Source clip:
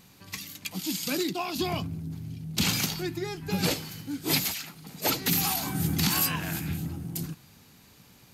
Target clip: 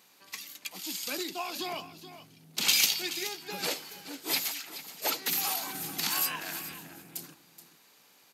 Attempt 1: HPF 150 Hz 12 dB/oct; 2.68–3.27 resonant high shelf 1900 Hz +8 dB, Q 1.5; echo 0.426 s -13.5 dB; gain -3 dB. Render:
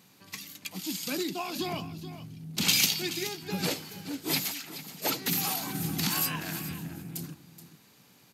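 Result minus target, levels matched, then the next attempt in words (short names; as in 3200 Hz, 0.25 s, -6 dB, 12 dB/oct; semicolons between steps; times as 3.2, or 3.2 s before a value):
125 Hz band +15.0 dB
HPF 450 Hz 12 dB/oct; 2.68–3.27 resonant high shelf 1900 Hz +8 dB, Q 1.5; echo 0.426 s -13.5 dB; gain -3 dB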